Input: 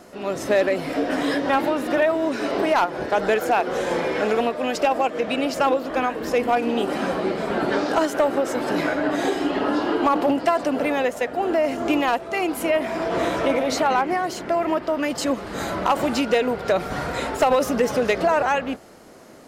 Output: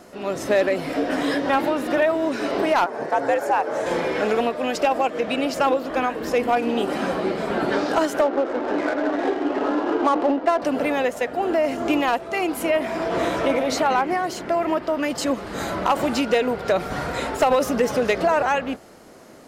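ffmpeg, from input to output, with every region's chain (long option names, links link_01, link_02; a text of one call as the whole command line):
ffmpeg -i in.wav -filter_complex "[0:a]asettb=1/sr,asplit=3[link_01][link_02][link_03];[link_01]atrim=end=2.864[link_04];[link_02]atrim=start=2.86:end=3.86,asetpts=PTS-STARTPTS,afade=type=in:duration=0.004:curve=qsin,afade=type=out:start_time=0.996:duration=0.004:curve=qsin,lowpass=10000,equalizer=frequency=3300:width=1.1:gain=-9.5,afreqshift=82[link_05];[link_03]atrim=start=3.856[link_06];[link_04][link_05]acrossfade=duration=0.004:curve1=hsin:curve2=qsin[link_07];[link_07][link_06]acrossfade=duration=0.004:curve1=qsin:curve2=hsin,asettb=1/sr,asplit=3[link_08][link_09][link_10];[link_08]atrim=end=8.214[link_11];[link_09]atrim=start=8.21:end=10.62,asetpts=PTS-STARTPTS,afade=type=in:duration=0.004:curve=qsin,afade=type=out:start_time=2.406:duration=0.004:curve=qsin,highpass=frequency=250:width=0.5412,highpass=frequency=250:width=1.3066,aemphasis=mode=reproduction:type=75fm,adynamicsmooth=sensitivity=3:basefreq=1100[link_12];[link_10]atrim=start=10.616[link_13];[link_11][link_12]acrossfade=duration=0.004:curve1=hsin:curve2=qsin[link_14];[link_14][link_13]acrossfade=duration=0.004:curve1=qsin:curve2=hsin" out.wav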